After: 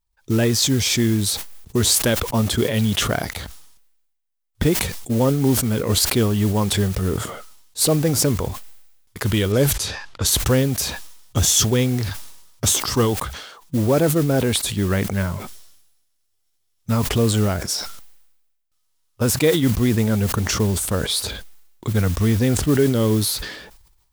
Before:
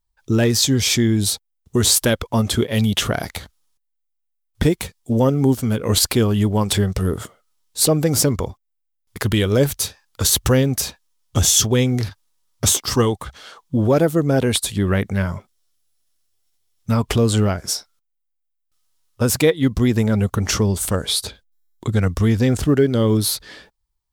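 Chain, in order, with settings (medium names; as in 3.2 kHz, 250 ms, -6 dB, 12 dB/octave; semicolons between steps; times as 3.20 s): modulation noise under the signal 19 dB; 9.52–10.40 s: level-controlled noise filter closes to 3 kHz, open at -13.5 dBFS; decay stretcher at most 55 dB/s; trim -2 dB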